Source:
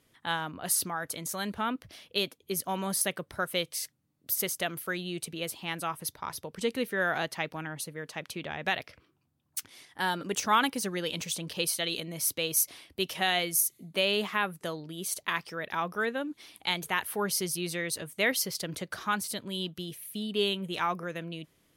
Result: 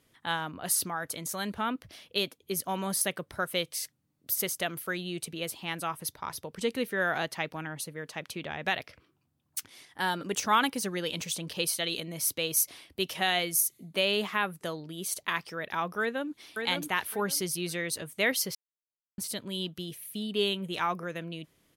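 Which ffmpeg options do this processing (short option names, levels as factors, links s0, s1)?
-filter_complex "[0:a]asplit=2[s0][s1];[s1]afade=t=in:st=16:d=0.01,afade=t=out:st=16.6:d=0.01,aecho=0:1:560|1120|1680:0.595662|0.119132|0.0238265[s2];[s0][s2]amix=inputs=2:normalize=0,asplit=3[s3][s4][s5];[s3]atrim=end=18.55,asetpts=PTS-STARTPTS,afade=t=out:st=18.546:d=0.004:c=hsin[s6];[s4]atrim=start=18.55:end=19.18,asetpts=PTS-STARTPTS,volume=0[s7];[s5]atrim=start=19.18,asetpts=PTS-STARTPTS,afade=t=in:d=0.004:c=hsin[s8];[s6][s7][s8]concat=n=3:v=0:a=1"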